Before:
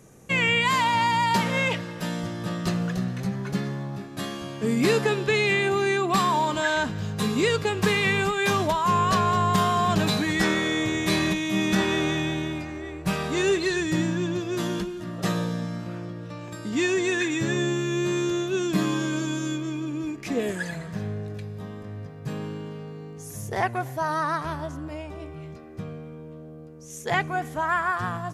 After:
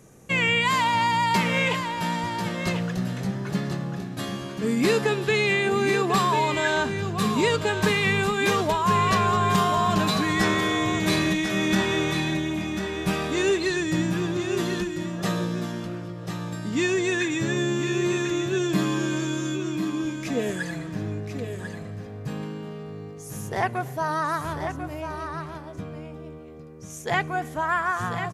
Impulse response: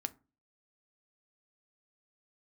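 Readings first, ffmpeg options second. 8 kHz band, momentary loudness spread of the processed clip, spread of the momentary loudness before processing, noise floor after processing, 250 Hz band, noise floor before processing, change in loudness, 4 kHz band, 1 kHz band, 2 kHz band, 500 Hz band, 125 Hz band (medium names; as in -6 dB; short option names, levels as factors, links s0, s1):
+0.5 dB, 13 LU, 15 LU, -39 dBFS, +0.5 dB, -41 dBFS, +0.5 dB, +0.5 dB, +0.5 dB, +0.5 dB, +0.5 dB, +0.5 dB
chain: -af "aecho=1:1:1043:0.398"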